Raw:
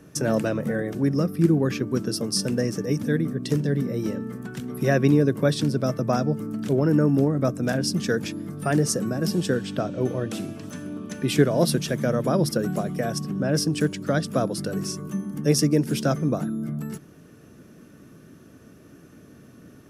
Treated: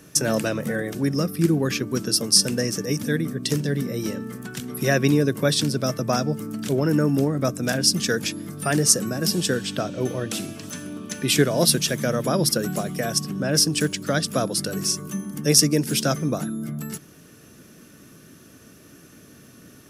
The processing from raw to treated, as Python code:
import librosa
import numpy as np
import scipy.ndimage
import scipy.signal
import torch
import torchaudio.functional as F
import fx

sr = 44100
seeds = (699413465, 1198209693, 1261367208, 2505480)

y = fx.high_shelf(x, sr, hz=2000.0, db=12.0)
y = F.gain(torch.from_numpy(y), -1.0).numpy()